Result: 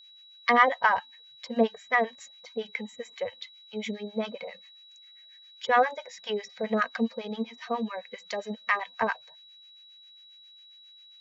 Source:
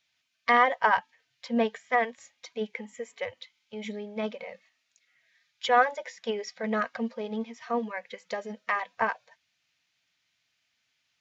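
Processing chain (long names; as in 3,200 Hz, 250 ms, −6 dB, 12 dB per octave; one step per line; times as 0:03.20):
two-band tremolo in antiphase 7.4 Hz, depth 100%, crossover 850 Hz
steady tone 3,900 Hz −56 dBFS
level +5.5 dB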